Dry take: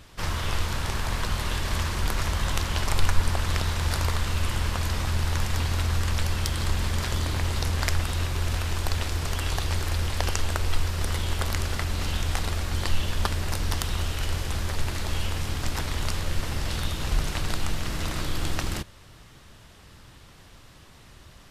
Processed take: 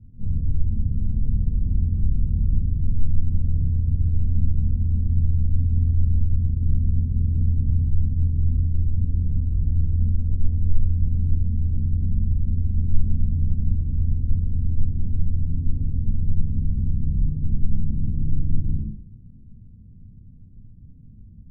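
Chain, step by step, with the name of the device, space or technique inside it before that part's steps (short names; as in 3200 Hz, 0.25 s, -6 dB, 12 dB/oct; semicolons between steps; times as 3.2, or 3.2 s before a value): club heard from the street (limiter -15.5 dBFS, peak gain reduction 10.5 dB; LPF 230 Hz 24 dB/oct; reverb RT60 0.60 s, pre-delay 3 ms, DRR -5.5 dB)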